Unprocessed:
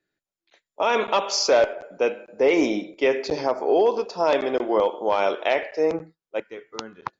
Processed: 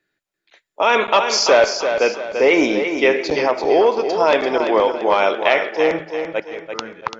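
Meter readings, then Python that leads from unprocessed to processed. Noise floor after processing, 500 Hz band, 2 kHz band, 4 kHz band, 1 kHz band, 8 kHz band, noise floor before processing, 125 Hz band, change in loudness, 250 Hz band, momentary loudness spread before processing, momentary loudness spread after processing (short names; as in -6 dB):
-80 dBFS, +5.0 dB, +9.5 dB, +7.0 dB, +6.5 dB, n/a, under -85 dBFS, +4.5 dB, +5.5 dB, +4.5 dB, 14 LU, 10 LU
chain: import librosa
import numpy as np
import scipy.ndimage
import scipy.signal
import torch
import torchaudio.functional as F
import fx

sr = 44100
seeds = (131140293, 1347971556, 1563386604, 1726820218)

p1 = fx.peak_eq(x, sr, hz=2000.0, db=5.5, octaves=2.0)
p2 = p1 + fx.echo_feedback(p1, sr, ms=339, feedback_pct=38, wet_db=-7.5, dry=0)
y = F.gain(torch.from_numpy(p2), 3.5).numpy()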